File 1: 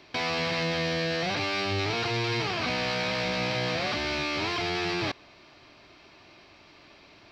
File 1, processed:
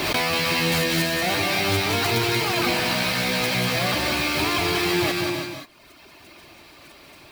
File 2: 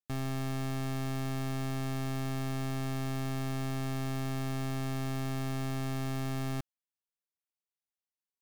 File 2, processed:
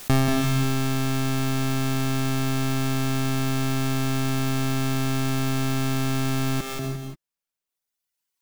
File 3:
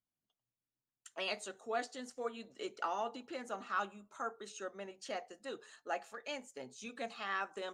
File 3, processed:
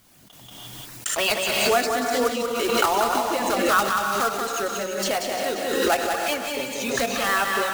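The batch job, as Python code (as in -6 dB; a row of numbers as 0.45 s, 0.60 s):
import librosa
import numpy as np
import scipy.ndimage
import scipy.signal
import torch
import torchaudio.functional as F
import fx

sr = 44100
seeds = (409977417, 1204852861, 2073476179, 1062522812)

p1 = fx.block_float(x, sr, bits=3)
p2 = fx.dereverb_blind(p1, sr, rt60_s=1.6)
p3 = p2 + fx.echo_single(p2, sr, ms=185, db=-5.0, dry=0)
p4 = fx.rev_gated(p3, sr, seeds[0], gate_ms=370, shape='rising', drr_db=4.0)
p5 = fx.pre_swell(p4, sr, db_per_s=30.0)
y = p5 * 10.0 ** (-24 / 20.0) / np.sqrt(np.mean(np.square(p5)))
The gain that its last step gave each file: +6.5 dB, +15.5 dB, +15.0 dB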